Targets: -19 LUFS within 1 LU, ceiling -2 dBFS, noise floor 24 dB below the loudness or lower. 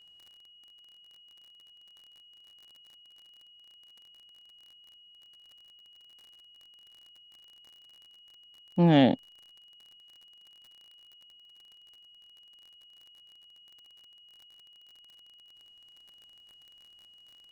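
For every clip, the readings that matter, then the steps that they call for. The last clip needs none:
tick rate 39 per s; steady tone 2.9 kHz; tone level -54 dBFS; loudness -24.0 LUFS; peak level -9.5 dBFS; loudness target -19.0 LUFS
-> de-click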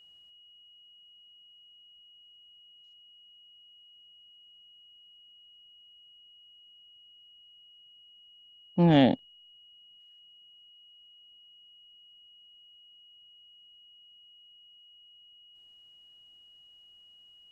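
tick rate 0 per s; steady tone 2.9 kHz; tone level -54 dBFS
-> band-stop 2.9 kHz, Q 30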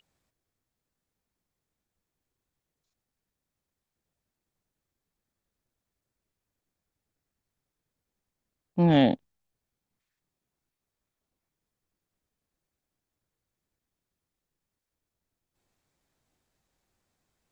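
steady tone not found; loudness -23.0 LUFS; peak level -9.5 dBFS; loudness target -19.0 LUFS
-> trim +4 dB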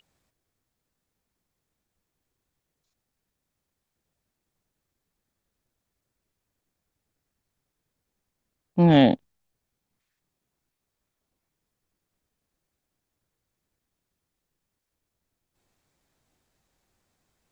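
loudness -19.0 LUFS; peak level -5.5 dBFS; noise floor -83 dBFS

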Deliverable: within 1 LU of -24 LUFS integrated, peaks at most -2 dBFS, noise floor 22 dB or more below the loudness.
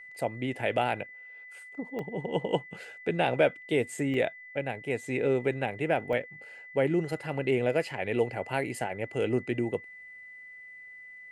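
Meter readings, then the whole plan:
dropouts 3; longest dropout 1.9 ms; steady tone 2 kHz; tone level -45 dBFS; loudness -30.5 LUFS; peak level -11.5 dBFS; loudness target -24.0 LUFS
-> interpolate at 1.99/4.14/6.13 s, 1.9 ms; band-stop 2 kHz, Q 30; trim +6.5 dB

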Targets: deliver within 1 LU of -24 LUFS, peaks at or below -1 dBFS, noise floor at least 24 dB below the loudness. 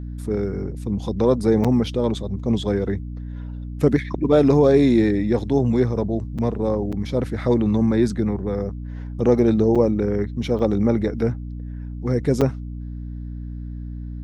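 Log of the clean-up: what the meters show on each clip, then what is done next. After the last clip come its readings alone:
dropouts 6; longest dropout 6.2 ms; hum 60 Hz; highest harmonic 300 Hz; hum level -29 dBFS; loudness -20.5 LUFS; peak level -4.0 dBFS; loudness target -24.0 LUFS
-> interpolate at 1.64/6.38/6.92/9.75/10.59/12.41 s, 6.2 ms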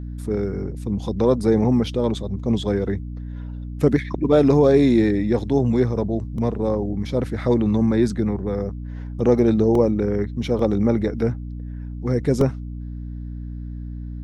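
dropouts 0; hum 60 Hz; highest harmonic 300 Hz; hum level -29 dBFS
-> hum notches 60/120/180/240/300 Hz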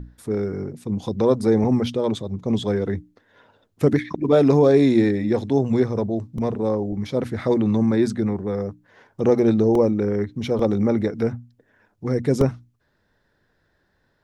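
hum not found; loudness -21.0 LUFS; peak level -4.0 dBFS; loudness target -24.0 LUFS
-> trim -3 dB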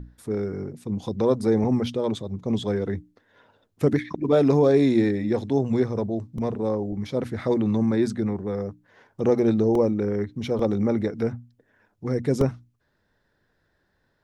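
loudness -24.0 LUFS; peak level -7.0 dBFS; noise floor -71 dBFS

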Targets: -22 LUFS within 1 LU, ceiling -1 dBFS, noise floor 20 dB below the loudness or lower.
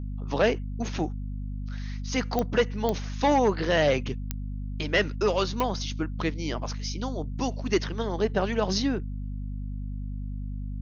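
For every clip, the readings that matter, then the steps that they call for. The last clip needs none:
clicks found 4; hum 50 Hz; highest harmonic 250 Hz; hum level -31 dBFS; loudness -28.5 LUFS; peak level -9.5 dBFS; loudness target -22.0 LUFS
-> de-click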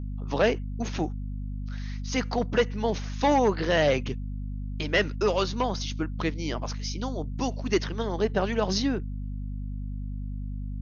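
clicks found 0; hum 50 Hz; highest harmonic 250 Hz; hum level -31 dBFS
-> de-hum 50 Hz, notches 5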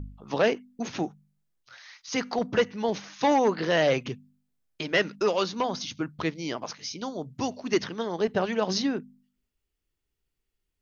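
hum not found; loudness -28.0 LUFS; peak level -9.5 dBFS; loudness target -22.0 LUFS
-> trim +6 dB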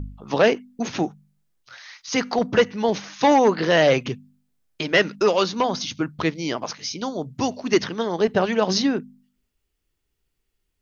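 loudness -22.0 LUFS; peak level -3.5 dBFS; noise floor -76 dBFS

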